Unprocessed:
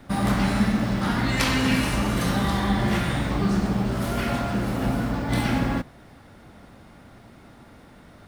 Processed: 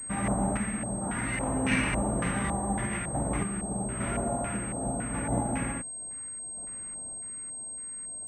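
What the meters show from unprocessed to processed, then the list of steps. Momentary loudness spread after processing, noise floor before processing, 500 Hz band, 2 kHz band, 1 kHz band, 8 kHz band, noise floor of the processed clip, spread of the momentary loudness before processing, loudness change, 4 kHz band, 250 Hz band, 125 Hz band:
8 LU, -49 dBFS, -4.5 dB, -5.5 dB, -5.5 dB, +7.5 dB, -39 dBFS, 4 LU, -7.0 dB, -14.5 dB, -8.0 dB, -8.0 dB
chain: LFO low-pass square 1.8 Hz 730–2300 Hz; random-step tremolo; class-D stage that switches slowly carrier 8.4 kHz; trim -5.5 dB

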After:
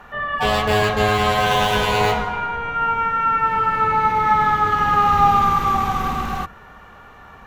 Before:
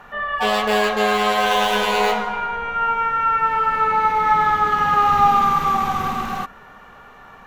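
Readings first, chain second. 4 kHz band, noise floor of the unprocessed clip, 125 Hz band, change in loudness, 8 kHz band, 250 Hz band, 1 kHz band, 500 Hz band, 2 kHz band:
0.0 dB, -44 dBFS, +8.5 dB, 0.0 dB, no reading, +1.5 dB, 0.0 dB, 0.0 dB, 0.0 dB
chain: octave divider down 2 oct, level +2 dB

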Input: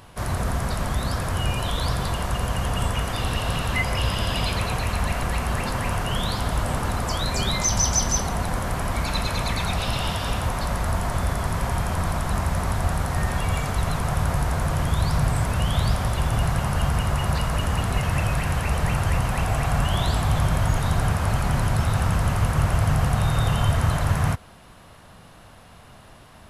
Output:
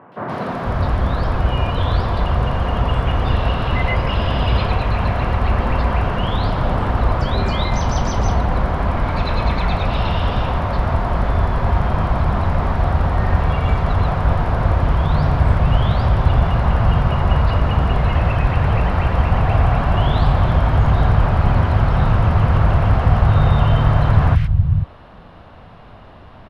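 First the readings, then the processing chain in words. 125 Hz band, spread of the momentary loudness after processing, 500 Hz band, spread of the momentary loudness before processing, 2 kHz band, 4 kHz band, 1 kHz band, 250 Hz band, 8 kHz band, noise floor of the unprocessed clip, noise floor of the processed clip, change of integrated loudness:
+7.0 dB, 5 LU, +7.0 dB, 4 LU, +2.5 dB, -0.5 dB, +6.0 dB, +6.0 dB, under -10 dB, -48 dBFS, -41 dBFS, +6.0 dB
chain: in parallel at -3.5 dB: short-mantissa float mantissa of 2-bit; on the sum: distance through air 350 m; three bands offset in time mids, highs, lows 120/480 ms, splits 160/1900 Hz; trim +4 dB

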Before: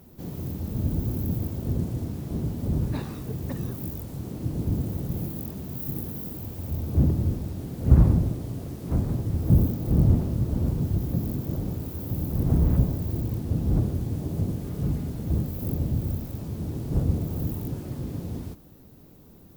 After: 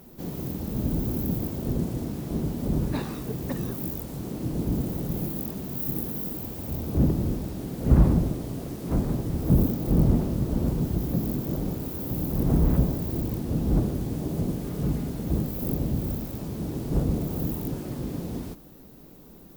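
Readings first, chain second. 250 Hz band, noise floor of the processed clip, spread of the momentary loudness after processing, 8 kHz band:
+2.0 dB, -48 dBFS, 10 LU, no reading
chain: in parallel at -9.5 dB: hard clipper -15.5 dBFS, distortion -13 dB; on the sum: peaking EQ 93 Hz -11 dB 0.94 oct; trim +1.5 dB

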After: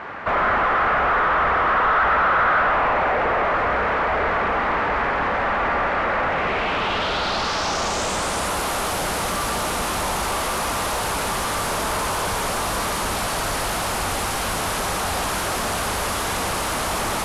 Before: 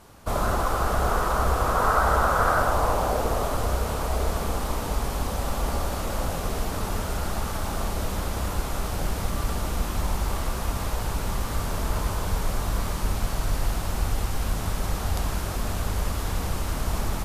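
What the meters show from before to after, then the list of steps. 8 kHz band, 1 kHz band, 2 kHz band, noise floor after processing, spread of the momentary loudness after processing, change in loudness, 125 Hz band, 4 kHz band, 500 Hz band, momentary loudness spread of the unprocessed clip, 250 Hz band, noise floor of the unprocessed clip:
+8.0 dB, +7.5 dB, +12.0 dB, -25 dBFS, 6 LU, +6.0 dB, -5.0 dB, +9.5 dB, +5.5 dB, 8 LU, +2.5 dB, -30 dBFS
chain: overdrive pedal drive 34 dB, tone 3.2 kHz, clips at -8 dBFS; low-pass sweep 1.9 kHz -> 11 kHz, 6.27–8.56 s; trim -7 dB

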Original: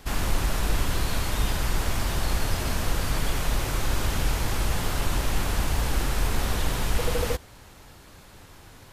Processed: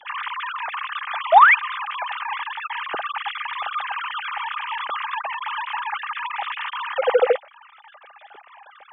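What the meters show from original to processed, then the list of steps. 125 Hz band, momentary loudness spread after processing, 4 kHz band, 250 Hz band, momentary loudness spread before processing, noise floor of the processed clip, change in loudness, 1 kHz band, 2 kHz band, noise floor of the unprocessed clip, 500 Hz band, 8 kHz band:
under -40 dB, 12 LU, 0.0 dB, under -20 dB, 1 LU, -49 dBFS, +5.5 dB, +13.0 dB, +10.5 dB, -49 dBFS, +8.5 dB, under -40 dB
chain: formants replaced by sine waves; painted sound rise, 1.32–1.55 s, 600–2600 Hz -8 dBFS; small resonant body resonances 820/1200 Hz, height 8 dB, ringing for 40 ms; trim -4.5 dB

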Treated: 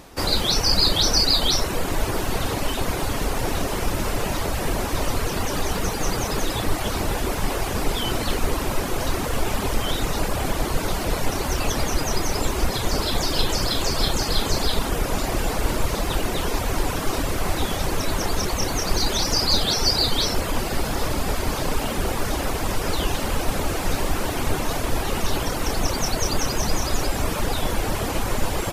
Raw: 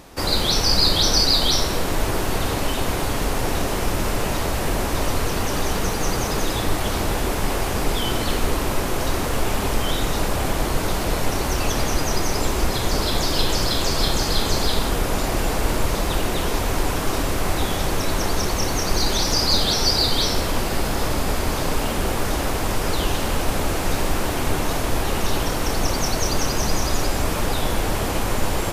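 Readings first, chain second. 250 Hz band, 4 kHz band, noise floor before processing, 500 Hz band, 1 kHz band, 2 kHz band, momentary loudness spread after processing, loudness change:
-2.0 dB, -1.5 dB, -24 dBFS, -2.0 dB, -2.0 dB, -2.0 dB, 7 LU, -1.5 dB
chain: reverb removal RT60 0.64 s

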